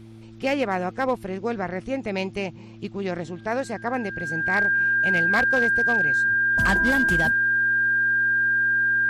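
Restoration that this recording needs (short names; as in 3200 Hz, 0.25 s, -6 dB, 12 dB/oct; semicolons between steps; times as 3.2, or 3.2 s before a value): clip repair -14.5 dBFS; de-hum 111.7 Hz, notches 3; notch 1600 Hz, Q 30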